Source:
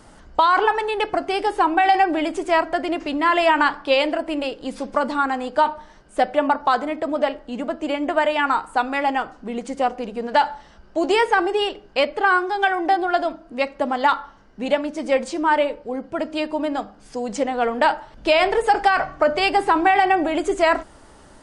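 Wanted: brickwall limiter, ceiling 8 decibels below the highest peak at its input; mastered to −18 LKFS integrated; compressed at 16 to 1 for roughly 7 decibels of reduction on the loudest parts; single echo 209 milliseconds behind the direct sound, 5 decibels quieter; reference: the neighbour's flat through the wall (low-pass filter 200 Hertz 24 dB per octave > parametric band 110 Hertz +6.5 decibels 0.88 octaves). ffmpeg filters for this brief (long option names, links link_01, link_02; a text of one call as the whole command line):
ffmpeg -i in.wav -af "acompressor=threshold=-19dB:ratio=16,alimiter=limit=-16.5dB:level=0:latency=1,lowpass=frequency=200:width=0.5412,lowpass=frequency=200:width=1.3066,equalizer=frequency=110:width_type=o:width=0.88:gain=6.5,aecho=1:1:209:0.562,volume=25.5dB" out.wav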